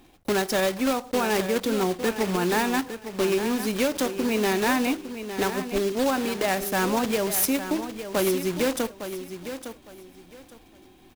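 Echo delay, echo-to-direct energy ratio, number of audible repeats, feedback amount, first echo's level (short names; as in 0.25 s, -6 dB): 0.858 s, -10.0 dB, 2, 24%, -10.5 dB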